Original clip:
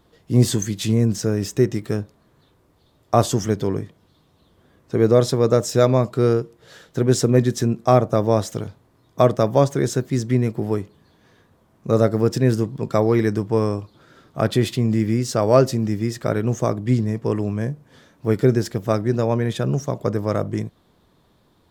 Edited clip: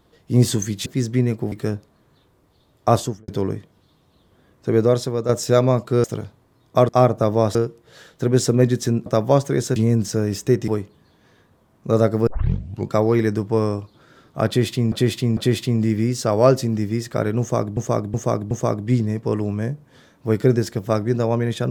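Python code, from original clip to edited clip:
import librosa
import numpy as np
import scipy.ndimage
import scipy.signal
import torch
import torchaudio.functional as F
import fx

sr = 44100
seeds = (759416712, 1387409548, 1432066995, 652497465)

y = fx.studio_fade_out(x, sr, start_s=3.2, length_s=0.34)
y = fx.edit(y, sr, fx.swap(start_s=0.86, length_s=0.92, other_s=10.02, other_length_s=0.66),
    fx.fade_out_to(start_s=4.98, length_s=0.57, floor_db=-8.5),
    fx.swap(start_s=6.3, length_s=1.51, other_s=8.47, other_length_s=0.85),
    fx.tape_start(start_s=12.27, length_s=0.62),
    fx.repeat(start_s=14.47, length_s=0.45, count=3),
    fx.repeat(start_s=16.5, length_s=0.37, count=4), tone=tone)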